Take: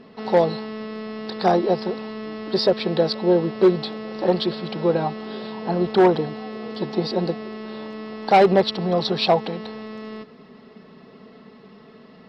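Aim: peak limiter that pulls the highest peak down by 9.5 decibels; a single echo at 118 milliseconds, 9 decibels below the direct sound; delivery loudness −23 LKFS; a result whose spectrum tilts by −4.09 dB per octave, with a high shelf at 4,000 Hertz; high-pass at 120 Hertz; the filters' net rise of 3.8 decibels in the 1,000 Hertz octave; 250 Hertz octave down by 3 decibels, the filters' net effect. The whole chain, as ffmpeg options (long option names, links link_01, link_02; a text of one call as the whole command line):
ffmpeg -i in.wav -af "highpass=120,equalizer=frequency=250:width_type=o:gain=-5.5,equalizer=frequency=1000:width_type=o:gain=6.5,highshelf=frequency=4000:gain=-6.5,alimiter=limit=-11.5dB:level=0:latency=1,aecho=1:1:118:0.355,volume=2dB" out.wav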